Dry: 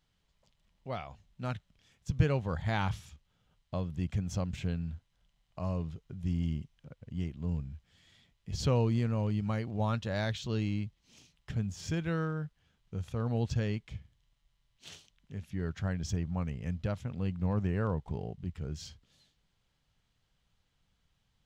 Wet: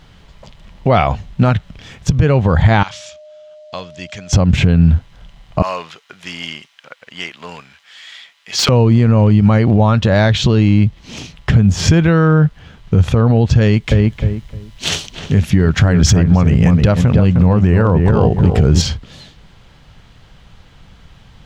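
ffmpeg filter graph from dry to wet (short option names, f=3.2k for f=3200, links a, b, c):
-filter_complex "[0:a]asettb=1/sr,asplit=3[a][b][c];[a]atrim=end=2.834[d];[b]atrim=start=2.83:end=4.33,asetpts=PTS-STARTPTS,afade=t=in:d=0.004:c=qsin,afade=t=out:st=1.496:d=0.004:c=qsin,lowpass=f=7.1k:w=0.5412,lowpass=f=7.1k:w=1.3066,aderivative,aeval=exprs='val(0)+0.000355*sin(2*PI*610*n/s)':c=same[e];[c]atrim=start=4.326[f];[d][e]acrossfade=d=0.004:c1=hsin:c2=qsin[g];[g][f]acrossfade=d=0.004:c1=qsin:c2=hsin,asettb=1/sr,asplit=3[h][i][j];[h]atrim=end=5.624[k];[i]atrim=start=5.62:end=8.69,asetpts=PTS-STARTPTS,afade=t=in:d=0.004:c=qsin,afade=t=out:st=3.066:d=0.004:c=qsin,highpass=1.4k,aeval=exprs='0.0188*(abs(mod(val(0)/0.0188+3,4)-2)-1)':c=same[l];[j]atrim=start=8.686[m];[k][l]acrossfade=d=0.004:c1=hsin:c2=qsin[n];[n][m]acrossfade=d=0.004:c1=qsin:c2=hsin,asettb=1/sr,asplit=3[o][p][q];[o]atrim=end=13.614[r];[p]atrim=start=13.61:end=18.82,asetpts=PTS-STARTPTS,afade=t=in:d=0.004:c=qsin,afade=t=out:st=5.206:d=0.004:c=qsin,highshelf=f=4.7k:g=9.5,asplit=2[s][t];[t]adelay=306,lowpass=f=1.6k:p=1,volume=-7dB,asplit=2[u][v];[v]adelay=306,lowpass=f=1.6k:p=1,volume=0.21,asplit=2[w][x];[x]adelay=306,lowpass=f=1.6k:p=1,volume=0.21[y];[s][u][w][y]amix=inputs=4:normalize=0,atrim=end_sample=229761[z];[q]atrim=start=18.816[aa];[r][z]acrossfade=d=0.004:c1=hsin:c2=qsin[ab];[ab][aa]acrossfade=d=0.004:c1=qsin:c2=hsin,lowpass=f=2.5k:p=1,acompressor=threshold=-37dB:ratio=5,alimiter=level_in=33.5dB:limit=-1dB:release=50:level=0:latency=1,volume=-1dB"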